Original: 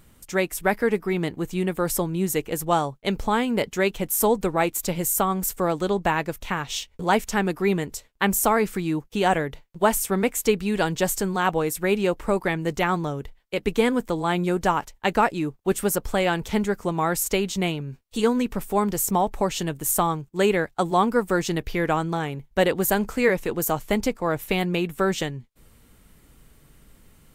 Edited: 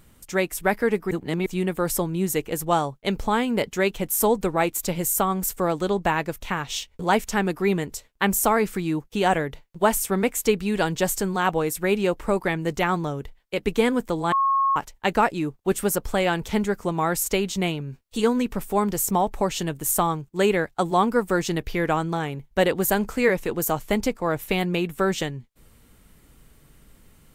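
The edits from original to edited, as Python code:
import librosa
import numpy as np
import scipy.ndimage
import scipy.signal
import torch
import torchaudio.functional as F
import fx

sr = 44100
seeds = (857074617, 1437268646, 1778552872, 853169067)

y = fx.edit(x, sr, fx.reverse_span(start_s=1.11, length_s=0.35),
    fx.bleep(start_s=14.32, length_s=0.44, hz=1090.0, db=-17.5), tone=tone)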